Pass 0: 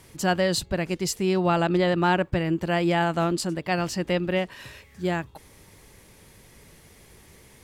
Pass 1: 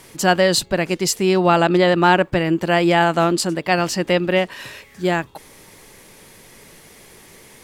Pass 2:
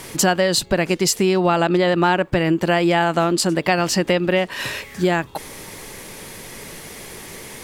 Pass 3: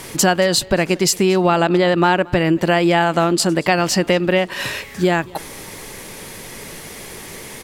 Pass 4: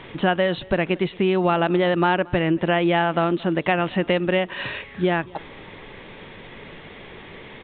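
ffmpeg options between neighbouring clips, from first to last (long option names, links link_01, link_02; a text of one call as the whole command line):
ffmpeg -i in.wav -af "equalizer=frequency=62:width=0.65:gain=-14,volume=8.5dB" out.wav
ffmpeg -i in.wav -af "acompressor=threshold=-25dB:ratio=4,volume=9dB" out.wav
ffmpeg -i in.wav -af "aecho=1:1:227:0.0631,volume=2dB" out.wav
ffmpeg -i in.wav -af "aresample=8000,aresample=44100,volume=-4.5dB" out.wav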